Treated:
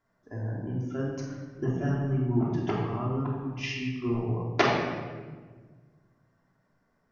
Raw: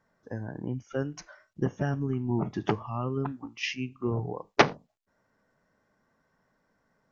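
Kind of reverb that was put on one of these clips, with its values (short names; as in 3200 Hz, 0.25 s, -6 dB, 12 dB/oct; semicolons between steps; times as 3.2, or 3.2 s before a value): shoebox room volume 1400 m³, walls mixed, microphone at 3.1 m; gain -6.5 dB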